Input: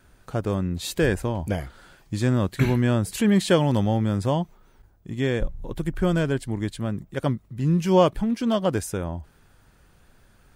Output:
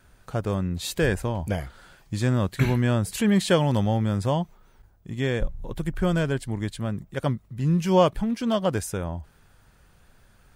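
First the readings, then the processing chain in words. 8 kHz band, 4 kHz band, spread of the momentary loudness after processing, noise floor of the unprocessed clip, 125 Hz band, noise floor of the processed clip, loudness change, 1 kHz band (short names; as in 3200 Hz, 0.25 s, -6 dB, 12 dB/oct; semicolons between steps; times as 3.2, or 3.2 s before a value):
0.0 dB, 0.0 dB, 12 LU, -58 dBFS, -0.5 dB, -58 dBFS, -1.0 dB, 0.0 dB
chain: bell 310 Hz -4 dB 0.85 oct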